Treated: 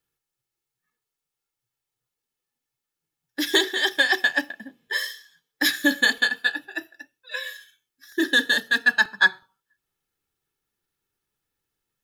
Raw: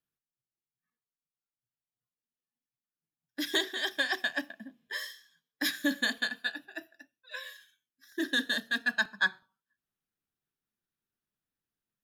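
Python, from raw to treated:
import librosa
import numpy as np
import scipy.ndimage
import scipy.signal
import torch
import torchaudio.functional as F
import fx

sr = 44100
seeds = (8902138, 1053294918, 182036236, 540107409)

y = x + 0.49 * np.pad(x, (int(2.3 * sr / 1000.0), 0))[:len(x)]
y = y * 10.0 ** (8.5 / 20.0)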